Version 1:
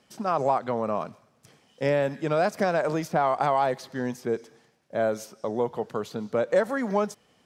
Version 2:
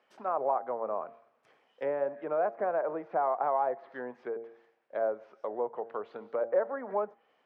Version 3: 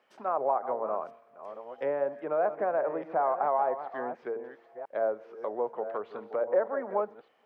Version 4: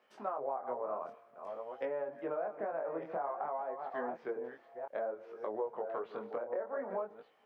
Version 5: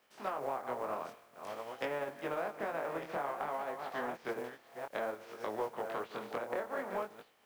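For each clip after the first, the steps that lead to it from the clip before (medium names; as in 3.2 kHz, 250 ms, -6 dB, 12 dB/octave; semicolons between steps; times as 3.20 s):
low-pass that closes with the level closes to 1.1 kHz, closed at -24 dBFS; three-band isolator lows -24 dB, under 370 Hz, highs -22 dB, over 2.8 kHz; de-hum 115.1 Hz, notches 7; trim -3 dB
chunks repeated in reverse 607 ms, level -10.5 dB; trim +1.5 dB
compression 12:1, threshold -32 dBFS, peak gain reduction 12.5 dB; chorus 0.54 Hz, delay 18.5 ms, depth 6.4 ms; trim +1.5 dB
spectral contrast reduction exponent 0.57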